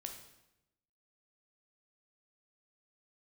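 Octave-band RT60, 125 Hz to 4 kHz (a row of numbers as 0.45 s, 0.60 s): 1.1 s, 1.1 s, 0.95 s, 0.85 s, 0.85 s, 0.80 s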